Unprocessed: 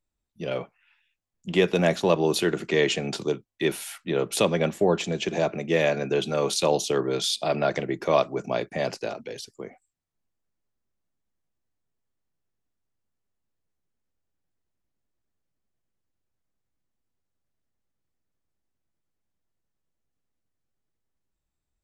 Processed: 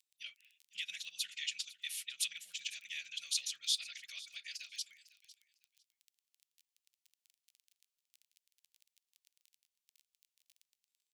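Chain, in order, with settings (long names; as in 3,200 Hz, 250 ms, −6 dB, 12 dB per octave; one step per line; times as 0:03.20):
phase-vocoder stretch with locked phases 0.51×
downward compressor 2.5 to 1, threshold −33 dBFS, peak gain reduction 11 dB
surface crackle 16 per second −47 dBFS
inverse Chebyshev high-pass filter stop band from 1,000 Hz, stop band 50 dB
on a send: repeating echo 503 ms, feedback 19%, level −18.5 dB
on the sum: level +3.5 dB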